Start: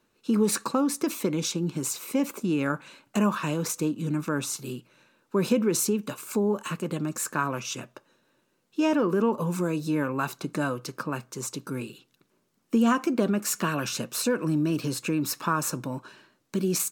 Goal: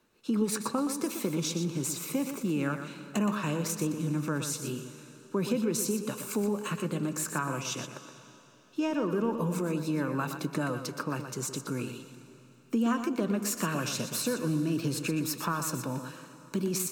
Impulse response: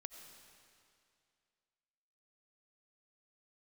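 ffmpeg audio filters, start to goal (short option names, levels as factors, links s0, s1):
-filter_complex "[0:a]acrossover=split=140[s0][s1];[s1]acompressor=threshold=0.0251:ratio=2[s2];[s0][s2]amix=inputs=2:normalize=0,asplit=2[s3][s4];[1:a]atrim=start_sample=2205,asetrate=33075,aresample=44100,adelay=121[s5];[s4][s5]afir=irnorm=-1:irlink=0,volume=0.596[s6];[s3][s6]amix=inputs=2:normalize=0"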